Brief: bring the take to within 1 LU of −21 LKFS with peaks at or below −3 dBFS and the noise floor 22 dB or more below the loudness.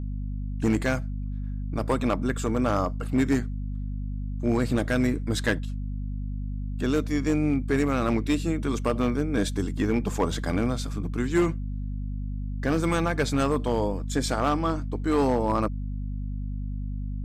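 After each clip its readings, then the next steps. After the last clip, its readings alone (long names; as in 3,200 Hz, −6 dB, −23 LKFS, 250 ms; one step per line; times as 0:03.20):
share of clipped samples 0.8%; peaks flattened at −16.0 dBFS; mains hum 50 Hz; hum harmonics up to 250 Hz; level of the hum −29 dBFS; integrated loudness −27.5 LKFS; sample peak −16.0 dBFS; target loudness −21.0 LKFS
→ clipped peaks rebuilt −16 dBFS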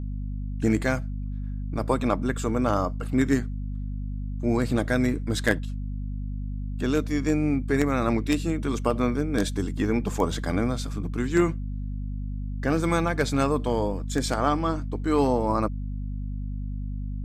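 share of clipped samples 0.0%; mains hum 50 Hz; hum harmonics up to 250 Hz; level of the hum −28 dBFS
→ mains-hum notches 50/100/150/200/250 Hz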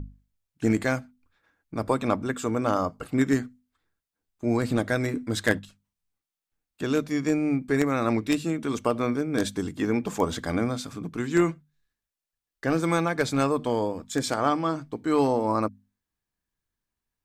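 mains hum none found; integrated loudness −26.5 LKFS; sample peak −7.0 dBFS; target loudness −21.0 LKFS
→ level +5.5 dB
brickwall limiter −3 dBFS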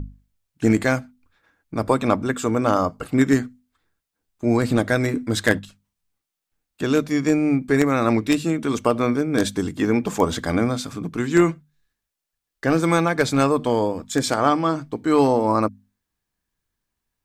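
integrated loudness −21.0 LKFS; sample peak −3.0 dBFS; background noise floor −83 dBFS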